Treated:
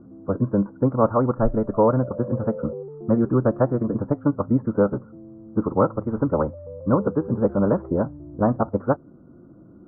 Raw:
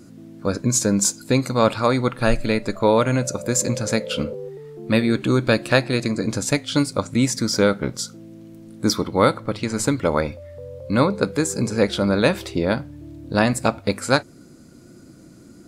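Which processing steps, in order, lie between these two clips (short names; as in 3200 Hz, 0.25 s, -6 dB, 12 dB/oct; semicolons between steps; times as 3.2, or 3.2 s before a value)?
time stretch by phase-locked vocoder 0.63×; steep low-pass 1300 Hz 48 dB/oct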